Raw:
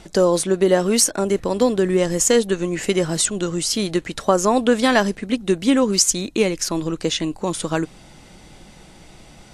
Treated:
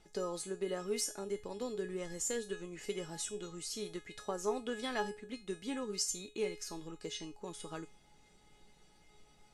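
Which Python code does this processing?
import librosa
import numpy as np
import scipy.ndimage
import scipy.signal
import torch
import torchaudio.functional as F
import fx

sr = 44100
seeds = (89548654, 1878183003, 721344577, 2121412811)

y = fx.comb_fb(x, sr, f0_hz=420.0, decay_s=0.3, harmonics='all', damping=0.0, mix_pct=90)
y = y * librosa.db_to_amplitude(-5.5)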